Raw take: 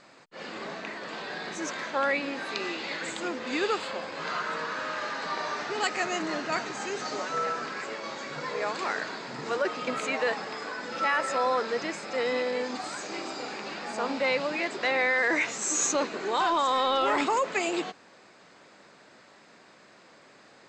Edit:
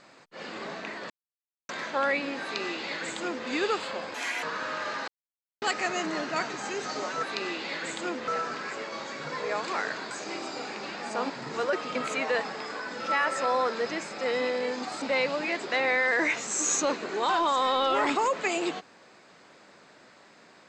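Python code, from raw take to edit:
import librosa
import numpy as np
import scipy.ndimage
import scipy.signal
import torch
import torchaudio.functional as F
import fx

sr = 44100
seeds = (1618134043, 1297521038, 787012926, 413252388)

y = fx.edit(x, sr, fx.silence(start_s=1.1, length_s=0.59),
    fx.duplicate(start_s=2.42, length_s=1.05, to_s=7.39),
    fx.speed_span(start_s=4.14, length_s=0.45, speed=1.56),
    fx.silence(start_s=5.24, length_s=0.54),
    fx.move(start_s=12.94, length_s=1.19, to_s=9.22), tone=tone)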